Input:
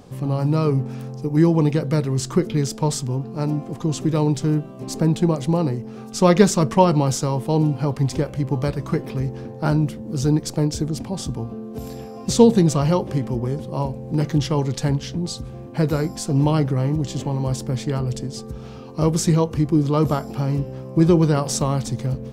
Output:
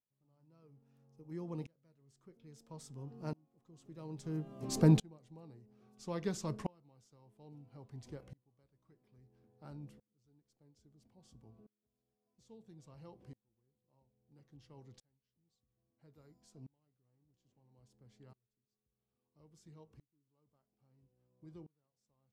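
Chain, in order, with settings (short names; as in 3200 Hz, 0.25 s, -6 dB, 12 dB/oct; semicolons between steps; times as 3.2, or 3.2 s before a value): Doppler pass-by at 4.7, 14 m/s, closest 5 m; dB-ramp tremolo swelling 0.6 Hz, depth 33 dB; gain -3 dB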